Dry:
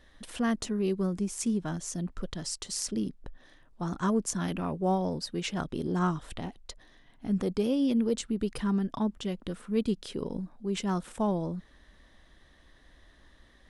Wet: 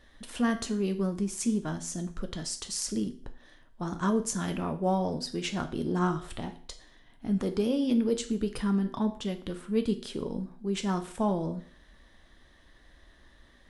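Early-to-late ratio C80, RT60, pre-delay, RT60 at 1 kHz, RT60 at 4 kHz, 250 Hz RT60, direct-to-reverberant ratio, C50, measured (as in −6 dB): 17.5 dB, 0.50 s, 8 ms, 0.45 s, 0.45 s, 0.50 s, 7.0 dB, 13.0 dB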